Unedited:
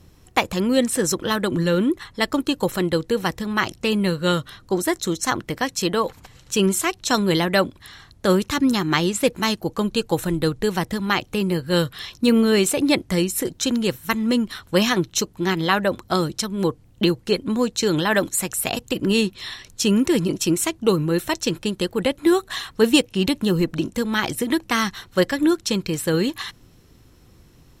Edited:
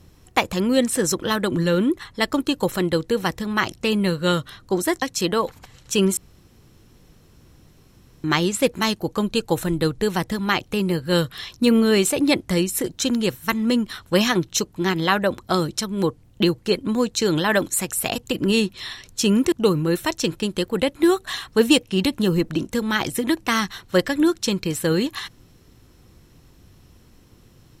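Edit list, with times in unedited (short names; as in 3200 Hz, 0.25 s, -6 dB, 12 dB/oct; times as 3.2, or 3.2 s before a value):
5.02–5.63 cut
6.78–8.85 room tone
20.13–20.75 cut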